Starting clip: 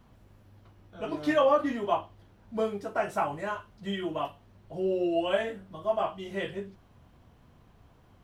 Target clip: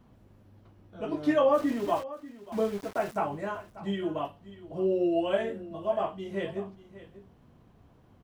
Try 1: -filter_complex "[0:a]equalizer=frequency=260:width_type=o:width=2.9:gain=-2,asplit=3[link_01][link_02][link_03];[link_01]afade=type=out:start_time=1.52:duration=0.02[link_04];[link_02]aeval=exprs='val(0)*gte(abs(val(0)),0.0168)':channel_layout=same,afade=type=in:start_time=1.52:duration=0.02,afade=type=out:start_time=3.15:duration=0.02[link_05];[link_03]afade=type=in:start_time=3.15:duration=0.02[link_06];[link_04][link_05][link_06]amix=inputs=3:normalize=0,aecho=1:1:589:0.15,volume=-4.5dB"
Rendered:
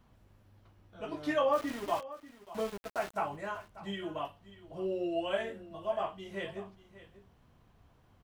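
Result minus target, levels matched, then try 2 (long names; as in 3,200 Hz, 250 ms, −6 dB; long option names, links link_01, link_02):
250 Hz band −3.0 dB
-filter_complex "[0:a]equalizer=frequency=260:width_type=o:width=2.9:gain=7,asplit=3[link_01][link_02][link_03];[link_01]afade=type=out:start_time=1.52:duration=0.02[link_04];[link_02]aeval=exprs='val(0)*gte(abs(val(0)),0.0168)':channel_layout=same,afade=type=in:start_time=1.52:duration=0.02,afade=type=out:start_time=3.15:duration=0.02[link_05];[link_03]afade=type=in:start_time=3.15:duration=0.02[link_06];[link_04][link_05][link_06]amix=inputs=3:normalize=0,aecho=1:1:589:0.15,volume=-4.5dB"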